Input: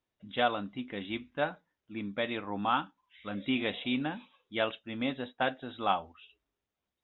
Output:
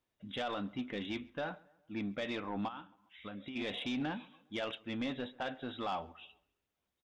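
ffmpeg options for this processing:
ffmpeg -i in.wav -filter_complex "[0:a]alimiter=level_in=1.5dB:limit=-24dB:level=0:latency=1:release=58,volume=-1.5dB,asplit=3[link_01][link_02][link_03];[link_01]afade=type=out:start_time=2.67:duration=0.02[link_04];[link_02]acompressor=threshold=-43dB:ratio=8,afade=type=in:start_time=2.67:duration=0.02,afade=type=out:start_time=3.55:duration=0.02[link_05];[link_03]afade=type=in:start_time=3.55:duration=0.02[link_06];[link_04][link_05][link_06]amix=inputs=3:normalize=0,asoftclip=type=tanh:threshold=-30.5dB,asplit=2[link_07][link_08];[link_08]adelay=136,lowpass=frequency=2800:poles=1,volume=-23.5dB,asplit=2[link_09][link_10];[link_10]adelay=136,lowpass=frequency=2800:poles=1,volume=0.47,asplit=2[link_11][link_12];[link_12]adelay=136,lowpass=frequency=2800:poles=1,volume=0.47[link_13];[link_09][link_11][link_13]amix=inputs=3:normalize=0[link_14];[link_07][link_14]amix=inputs=2:normalize=0,volume=1dB" out.wav

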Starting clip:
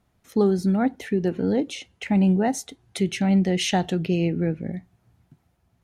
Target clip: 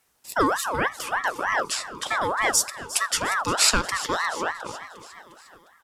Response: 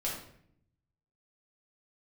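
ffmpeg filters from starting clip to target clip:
-filter_complex "[0:a]bass=frequency=250:gain=-14,treble=frequency=4000:gain=13,bandreject=frequency=3100:width=5.9,aecho=1:1:355|710|1065|1420|1775:0.178|0.0978|0.0538|0.0296|0.0163,asplit=2[link_01][link_02];[1:a]atrim=start_sample=2205,asetrate=36162,aresample=44100[link_03];[link_02][link_03]afir=irnorm=-1:irlink=0,volume=-24dB[link_04];[link_01][link_04]amix=inputs=2:normalize=0,aeval=exprs='val(0)*sin(2*PI*1100*n/s+1100*0.4/3.3*sin(2*PI*3.3*n/s))':channel_layout=same,volume=4dB"

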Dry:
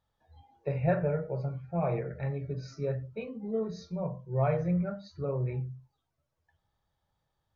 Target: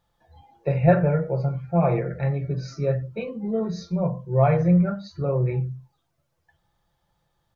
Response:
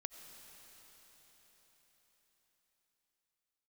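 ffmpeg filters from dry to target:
-af "aecho=1:1:5.8:0.41,volume=8dB"

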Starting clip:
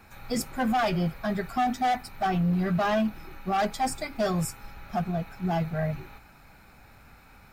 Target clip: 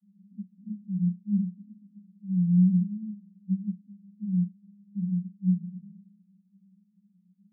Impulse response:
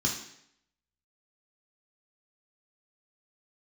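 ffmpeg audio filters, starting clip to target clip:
-filter_complex "[0:a]asuperpass=centerf=190:order=8:qfactor=7.1[link_01];[1:a]atrim=start_sample=2205,asetrate=79380,aresample=44100[link_02];[link_01][link_02]afir=irnorm=-1:irlink=0"

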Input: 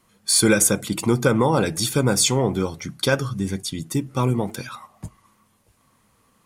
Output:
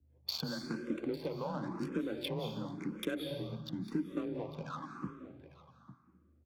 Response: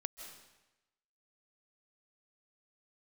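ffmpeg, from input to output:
-filter_complex "[0:a]lowpass=3900,agate=range=-33dB:threshold=-54dB:ratio=3:detection=peak,highpass=53,equalizer=frequency=280:width=4:gain=9,acompressor=threshold=-30dB:ratio=6,aeval=exprs='val(0)+0.000794*(sin(2*PI*50*n/s)+sin(2*PI*2*50*n/s)/2+sin(2*PI*3*50*n/s)/3+sin(2*PI*4*50*n/s)/4+sin(2*PI*5*50*n/s)/5)':channel_layout=same,afreqshift=26,adynamicsmooth=sensitivity=7.5:basefreq=720,aecho=1:1:851:0.178[link_01];[1:a]atrim=start_sample=2205,asetrate=39690,aresample=44100[link_02];[link_01][link_02]afir=irnorm=-1:irlink=0,asplit=2[link_03][link_04];[link_04]afreqshift=0.94[link_05];[link_03][link_05]amix=inputs=2:normalize=1"

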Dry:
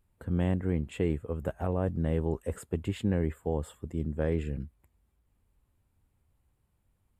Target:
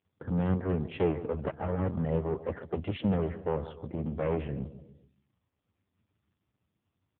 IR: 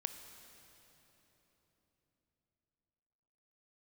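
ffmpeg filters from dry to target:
-filter_complex "[0:a]aeval=exprs='clip(val(0),-1,0.0112)':channel_layout=same,highpass=frequency=55:width=0.5412,highpass=frequency=55:width=1.3066,aecho=1:1:144|288|432|576|720:0.2|0.104|0.054|0.0281|0.0146,asplit=3[link_01][link_02][link_03];[link_01]afade=type=out:start_time=0.48:duration=0.02[link_04];[link_02]adynamicequalizer=threshold=0.00316:dfrequency=430:dqfactor=7.1:tfrequency=430:tqfactor=7.1:attack=5:release=100:ratio=0.375:range=2:mode=boostabove:tftype=bell,afade=type=in:start_time=0.48:duration=0.02,afade=type=out:start_time=1.59:duration=0.02[link_05];[link_03]afade=type=in:start_time=1.59:duration=0.02[link_06];[link_04][link_05][link_06]amix=inputs=3:normalize=0,afftdn=noise_reduction=18:noise_floor=-58,volume=7.5dB" -ar 8000 -c:a libopencore_amrnb -b:a 5150

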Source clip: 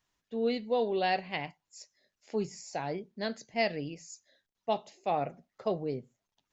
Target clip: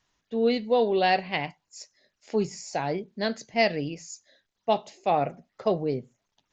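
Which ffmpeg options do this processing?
ffmpeg -i in.wav -af "volume=6.5dB" -ar 16000 -c:a sbc -b:a 64k out.sbc

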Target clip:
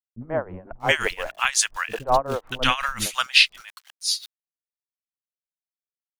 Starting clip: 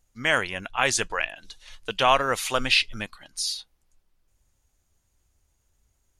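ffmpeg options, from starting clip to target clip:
ffmpeg -i in.wav -filter_complex "[0:a]aeval=exprs='val(0)*gte(abs(val(0)),0.0075)':channel_layout=same,acrossover=split=320|990[link_01][link_02][link_03];[link_02]adelay=50[link_04];[link_03]adelay=640[link_05];[link_01][link_04][link_05]amix=inputs=3:normalize=0,tremolo=f=5.6:d=0.87,volume=6.5dB" out.wav

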